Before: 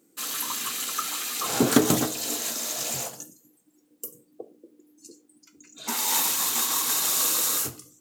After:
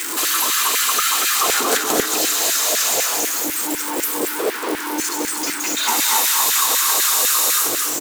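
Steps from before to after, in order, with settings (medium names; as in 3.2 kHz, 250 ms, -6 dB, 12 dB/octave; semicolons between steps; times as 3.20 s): jump at every zero crossing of -25 dBFS; compression 2:1, threshold -28 dBFS, peak gain reduction 9.5 dB; resonant low shelf 500 Hz +9 dB, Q 1.5; delay 232 ms -5 dB; LFO high-pass saw down 4 Hz 560–1900 Hz; trim +8 dB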